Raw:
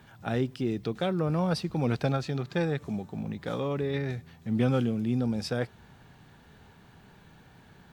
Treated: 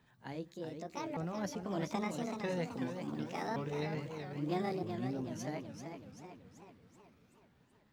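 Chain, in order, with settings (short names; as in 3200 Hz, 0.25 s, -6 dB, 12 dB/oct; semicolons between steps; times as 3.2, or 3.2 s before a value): repeated pitch sweeps +9 st, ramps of 1.227 s; Doppler pass-by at 3.15, 19 m/s, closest 24 m; warbling echo 0.381 s, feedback 55%, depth 170 cents, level -7 dB; gain -5.5 dB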